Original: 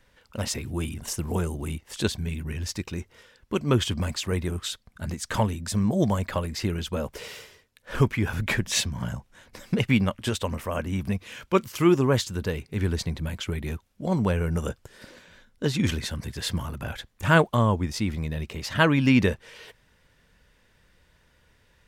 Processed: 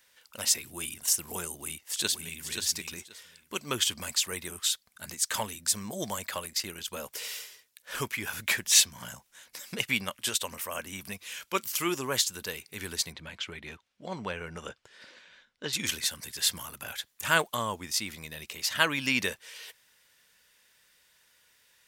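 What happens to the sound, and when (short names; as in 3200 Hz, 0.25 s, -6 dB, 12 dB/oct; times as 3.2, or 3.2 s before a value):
1.51–2.46 echo throw 0.53 s, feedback 15%, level -5.5 dB
6.43–6.88 transient shaper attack -3 dB, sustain -12 dB
13.12–15.73 LPF 3500 Hz
whole clip: tilt +4.5 dB/oct; gain -5.5 dB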